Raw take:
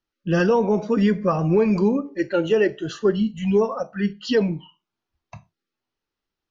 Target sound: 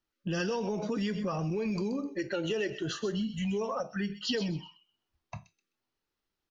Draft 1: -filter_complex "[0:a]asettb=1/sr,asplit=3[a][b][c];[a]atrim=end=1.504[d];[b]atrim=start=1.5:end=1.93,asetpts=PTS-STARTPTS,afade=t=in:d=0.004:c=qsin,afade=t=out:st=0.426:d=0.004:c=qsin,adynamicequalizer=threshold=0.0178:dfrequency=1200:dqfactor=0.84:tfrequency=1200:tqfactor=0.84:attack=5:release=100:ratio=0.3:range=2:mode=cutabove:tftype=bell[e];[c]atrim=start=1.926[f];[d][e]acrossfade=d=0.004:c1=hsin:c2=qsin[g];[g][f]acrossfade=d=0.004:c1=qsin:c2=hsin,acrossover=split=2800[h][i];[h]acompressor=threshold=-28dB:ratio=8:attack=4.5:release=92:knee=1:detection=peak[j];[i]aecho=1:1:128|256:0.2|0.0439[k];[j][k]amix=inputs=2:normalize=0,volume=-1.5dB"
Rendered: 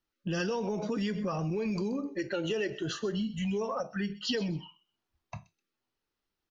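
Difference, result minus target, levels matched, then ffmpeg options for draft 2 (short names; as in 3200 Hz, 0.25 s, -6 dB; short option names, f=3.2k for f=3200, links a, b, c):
echo-to-direct -6 dB
-filter_complex "[0:a]asettb=1/sr,asplit=3[a][b][c];[a]atrim=end=1.504[d];[b]atrim=start=1.5:end=1.93,asetpts=PTS-STARTPTS,afade=t=in:d=0.004:c=qsin,afade=t=out:st=0.426:d=0.004:c=qsin,adynamicequalizer=threshold=0.0178:dfrequency=1200:dqfactor=0.84:tfrequency=1200:tqfactor=0.84:attack=5:release=100:ratio=0.3:range=2:mode=cutabove:tftype=bell[e];[c]atrim=start=1.926[f];[d][e]acrossfade=d=0.004:c1=hsin:c2=qsin[g];[g][f]acrossfade=d=0.004:c1=qsin:c2=hsin,acrossover=split=2800[h][i];[h]acompressor=threshold=-28dB:ratio=8:attack=4.5:release=92:knee=1:detection=peak[j];[i]aecho=1:1:128|256|384:0.398|0.0876|0.0193[k];[j][k]amix=inputs=2:normalize=0,volume=-1.5dB"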